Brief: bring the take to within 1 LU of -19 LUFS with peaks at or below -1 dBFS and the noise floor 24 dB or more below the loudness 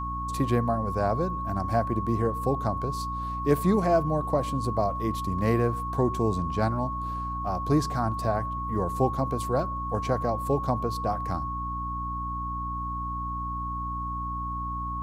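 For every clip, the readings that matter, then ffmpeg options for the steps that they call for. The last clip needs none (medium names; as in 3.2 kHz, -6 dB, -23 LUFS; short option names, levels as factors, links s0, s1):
hum 60 Hz; highest harmonic 300 Hz; hum level -33 dBFS; steady tone 1.1 kHz; tone level -31 dBFS; loudness -28.0 LUFS; peak level -8.5 dBFS; loudness target -19.0 LUFS
-> -af "bandreject=f=60:t=h:w=6,bandreject=f=120:t=h:w=6,bandreject=f=180:t=h:w=6,bandreject=f=240:t=h:w=6,bandreject=f=300:t=h:w=6"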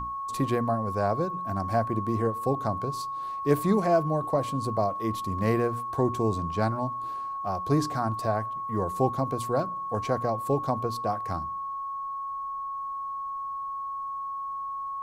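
hum not found; steady tone 1.1 kHz; tone level -31 dBFS
-> -af "bandreject=f=1100:w=30"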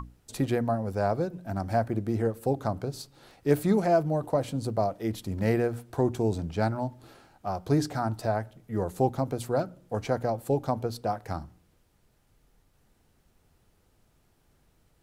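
steady tone not found; loudness -29.0 LUFS; peak level -9.0 dBFS; loudness target -19.0 LUFS
-> -af "volume=3.16,alimiter=limit=0.891:level=0:latency=1"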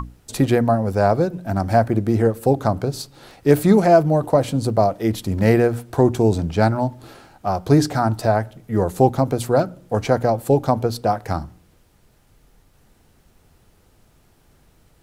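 loudness -19.0 LUFS; peak level -1.0 dBFS; noise floor -57 dBFS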